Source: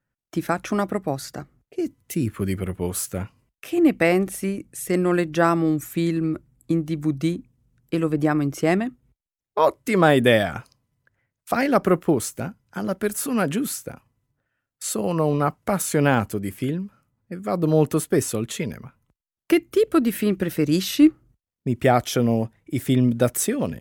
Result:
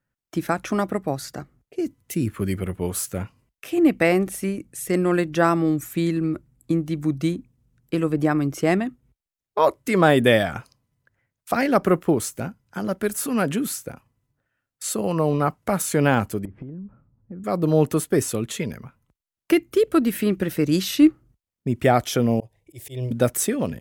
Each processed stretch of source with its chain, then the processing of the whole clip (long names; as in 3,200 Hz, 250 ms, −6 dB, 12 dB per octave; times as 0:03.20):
0:16.45–0:17.44: low-pass filter 1,400 Hz + spectral tilt −3 dB per octave + downward compressor 16 to 1, threshold −32 dBFS
0:22.40–0:23.11: volume swells 152 ms + phaser with its sweep stopped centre 570 Hz, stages 4
whole clip: no processing